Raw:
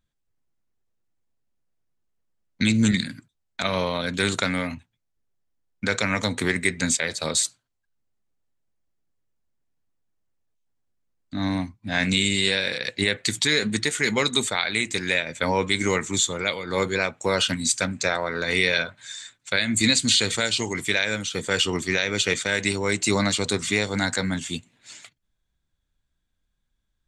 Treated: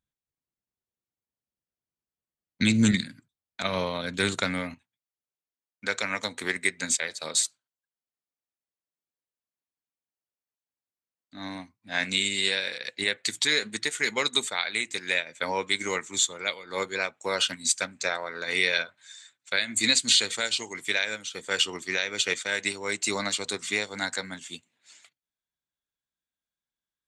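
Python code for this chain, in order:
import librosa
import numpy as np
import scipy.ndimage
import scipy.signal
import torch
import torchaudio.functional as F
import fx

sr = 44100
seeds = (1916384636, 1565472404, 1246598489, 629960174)

y = fx.highpass(x, sr, hz=fx.steps((0.0, 73.0), (4.74, 500.0)), slope=6)
y = fx.upward_expand(y, sr, threshold_db=-37.0, expansion=1.5)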